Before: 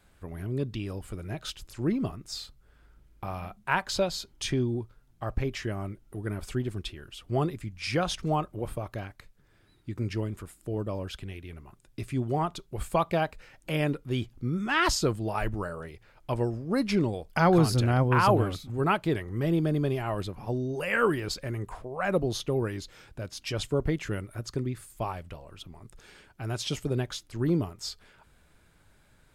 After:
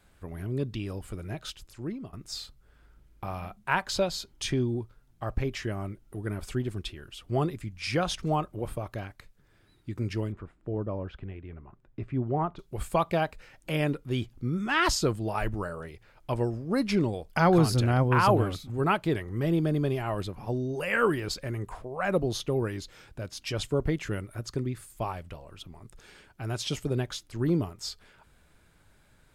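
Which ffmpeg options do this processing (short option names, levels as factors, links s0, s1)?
-filter_complex "[0:a]asettb=1/sr,asplit=3[s0][s1][s2];[s0]atrim=end=10.324[s3];[s1]atrim=start=10.32:end=12.59,asetpts=PTS-STARTPTS,afade=t=in:d=0.004:c=qsin,afade=t=out:st=2.266:d=0.004:c=qsin,lowpass=1600[s4];[s2]atrim=start=12.586[s5];[s3][s4]acrossfade=d=0.004:c1=hsin:c2=qsin[s6];[s6][s5]acrossfade=d=0.004:c1=qsin:c2=hsin,asplit=2[s7][s8];[s7]atrim=end=2.13,asetpts=PTS-STARTPTS,afade=t=out:st=1.25:d=0.88:silence=0.188365[s9];[s8]atrim=start=2.13,asetpts=PTS-STARTPTS,afade=t=in:d=0.004:c=hsin:silence=0.188365[s10];[s9][s10]concat=n=2:v=0:a=1"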